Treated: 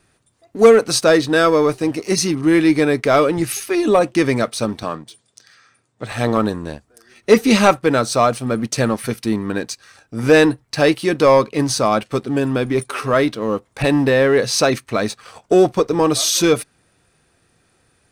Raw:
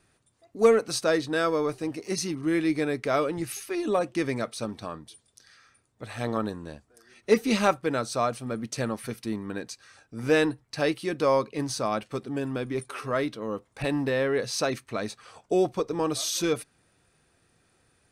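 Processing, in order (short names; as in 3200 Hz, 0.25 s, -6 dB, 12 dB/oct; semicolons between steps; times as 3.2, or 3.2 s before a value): 4.83–6.12 elliptic band-pass 110–8500 Hz; sample leveller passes 1; gain +8 dB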